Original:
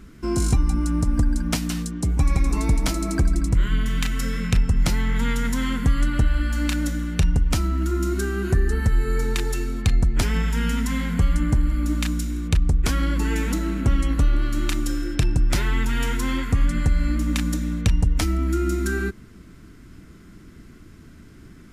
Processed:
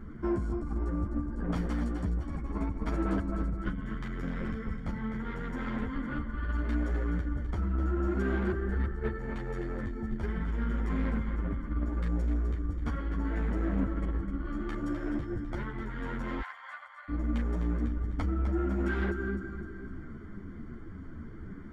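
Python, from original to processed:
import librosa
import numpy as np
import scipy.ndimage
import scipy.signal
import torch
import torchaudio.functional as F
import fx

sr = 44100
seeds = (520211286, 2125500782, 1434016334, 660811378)

y = scipy.signal.savgol_filter(x, 41, 4, mode='constant')
y = fx.over_compress(y, sr, threshold_db=-25.0, ratio=-1.0)
y = fx.echo_feedback(y, sr, ms=255, feedback_pct=47, wet_db=-8)
y = 10.0 ** (-22.0 / 20.0) * np.tanh(y / 10.0 ** (-22.0 / 20.0))
y = fx.ellip_highpass(y, sr, hz=710.0, order=4, stop_db=50, at=(16.4, 17.08), fade=0.02)
y = fx.ensemble(y, sr)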